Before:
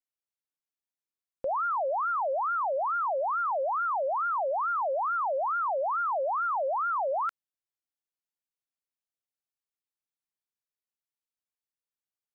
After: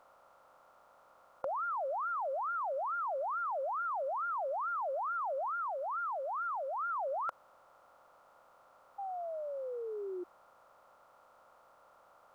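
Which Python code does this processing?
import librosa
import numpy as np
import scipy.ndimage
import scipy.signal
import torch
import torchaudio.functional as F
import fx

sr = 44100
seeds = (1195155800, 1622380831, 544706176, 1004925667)

y = fx.bin_compress(x, sr, power=0.4)
y = fx.low_shelf(y, sr, hz=410.0, db=-7.0, at=(5.5, 6.79))
y = fx.spec_paint(y, sr, seeds[0], shape='fall', start_s=8.98, length_s=1.26, low_hz=350.0, high_hz=810.0, level_db=-31.0)
y = y * librosa.db_to_amplitude(-8.5)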